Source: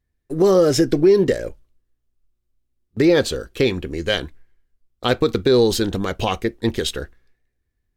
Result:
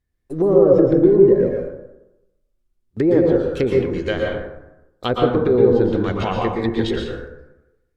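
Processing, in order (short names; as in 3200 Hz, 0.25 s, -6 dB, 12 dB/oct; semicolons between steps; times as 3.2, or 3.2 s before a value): treble ducked by the level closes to 790 Hz, closed at -13 dBFS; plate-style reverb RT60 0.94 s, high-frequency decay 0.45×, pre-delay 0.105 s, DRR -1 dB; gain -2 dB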